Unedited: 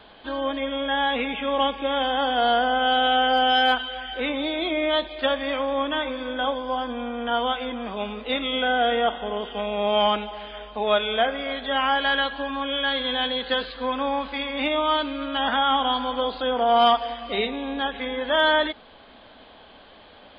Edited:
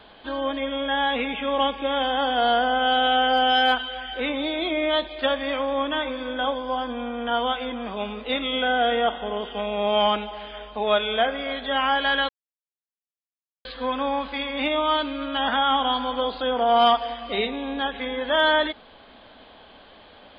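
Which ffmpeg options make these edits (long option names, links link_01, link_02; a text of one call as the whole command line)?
ffmpeg -i in.wav -filter_complex "[0:a]asplit=3[link_01][link_02][link_03];[link_01]atrim=end=12.29,asetpts=PTS-STARTPTS,afade=type=out:start_time=12.286:duration=0.004:curve=hsin[link_04];[link_02]atrim=start=12.29:end=13.65,asetpts=PTS-STARTPTS,volume=0[link_05];[link_03]atrim=start=13.65,asetpts=PTS-STARTPTS,afade=type=in:duration=0.004:curve=hsin[link_06];[link_04][link_05][link_06]concat=n=3:v=0:a=1" out.wav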